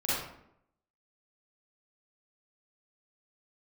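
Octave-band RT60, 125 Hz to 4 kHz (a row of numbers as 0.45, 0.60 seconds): 0.80, 0.90, 0.80, 0.70, 0.60, 0.45 seconds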